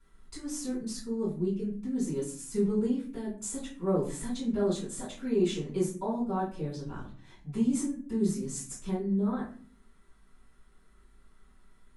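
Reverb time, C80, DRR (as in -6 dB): 0.45 s, 11.5 dB, -10.5 dB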